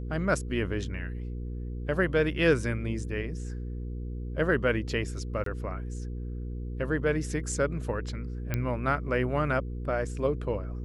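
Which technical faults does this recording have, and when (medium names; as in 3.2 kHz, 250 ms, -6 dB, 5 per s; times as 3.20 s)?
hum 60 Hz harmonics 8 -35 dBFS
5.44–5.46 s: dropout 23 ms
8.54 s: pop -15 dBFS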